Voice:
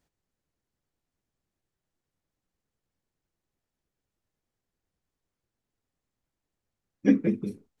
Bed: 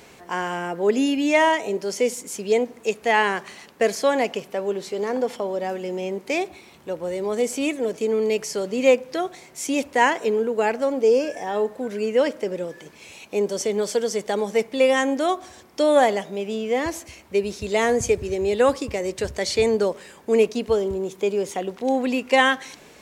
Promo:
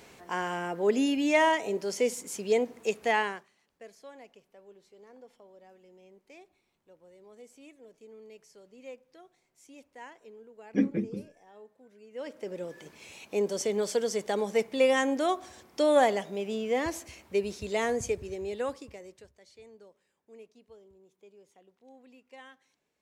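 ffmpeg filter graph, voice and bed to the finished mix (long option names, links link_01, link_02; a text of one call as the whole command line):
ffmpeg -i stem1.wav -i stem2.wav -filter_complex "[0:a]adelay=3700,volume=-5dB[link_01];[1:a]volume=17.5dB,afade=type=out:start_time=3.06:duration=0.42:silence=0.0707946,afade=type=in:start_time=12.1:duration=0.76:silence=0.0707946,afade=type=out:start_time=17.18:duration=2.14:silence=0.0421697[link_02];[link_01][link_02]amix=inputs=2:normalize=0" out.wav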